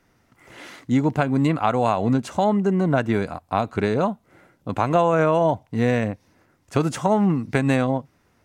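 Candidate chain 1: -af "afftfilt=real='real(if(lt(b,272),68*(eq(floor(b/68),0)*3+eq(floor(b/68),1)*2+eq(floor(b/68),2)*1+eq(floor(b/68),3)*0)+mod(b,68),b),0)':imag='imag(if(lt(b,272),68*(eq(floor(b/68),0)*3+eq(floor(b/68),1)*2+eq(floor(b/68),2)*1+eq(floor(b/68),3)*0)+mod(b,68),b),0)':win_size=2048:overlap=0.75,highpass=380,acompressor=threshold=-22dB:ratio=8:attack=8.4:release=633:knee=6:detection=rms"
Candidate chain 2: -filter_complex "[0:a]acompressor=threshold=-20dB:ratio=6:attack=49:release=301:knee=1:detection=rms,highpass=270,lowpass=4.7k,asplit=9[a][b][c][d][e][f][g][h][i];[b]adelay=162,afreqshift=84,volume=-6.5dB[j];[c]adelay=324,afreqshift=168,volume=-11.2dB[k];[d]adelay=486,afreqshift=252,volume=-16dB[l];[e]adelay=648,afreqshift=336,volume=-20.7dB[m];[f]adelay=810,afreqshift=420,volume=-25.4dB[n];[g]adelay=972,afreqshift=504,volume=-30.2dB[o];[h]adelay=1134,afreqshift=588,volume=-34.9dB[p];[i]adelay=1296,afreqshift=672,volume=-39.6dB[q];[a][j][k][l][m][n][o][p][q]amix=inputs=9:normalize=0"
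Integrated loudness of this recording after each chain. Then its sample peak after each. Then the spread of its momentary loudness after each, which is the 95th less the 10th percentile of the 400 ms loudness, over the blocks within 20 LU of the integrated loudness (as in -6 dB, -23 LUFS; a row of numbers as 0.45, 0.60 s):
-26.5, -26.0 LUFS; -10.5, -7.5 dBFS; 9, 11 LU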